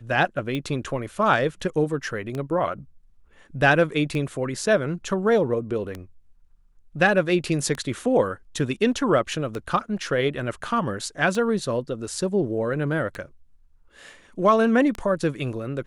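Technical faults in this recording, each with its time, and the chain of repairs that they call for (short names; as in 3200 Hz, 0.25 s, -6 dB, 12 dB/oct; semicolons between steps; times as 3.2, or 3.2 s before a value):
tick 33 1/3 rpm -17 dBFS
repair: de-click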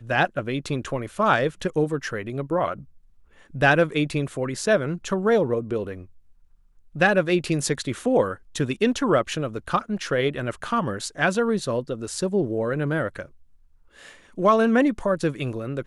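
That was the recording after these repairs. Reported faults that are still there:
none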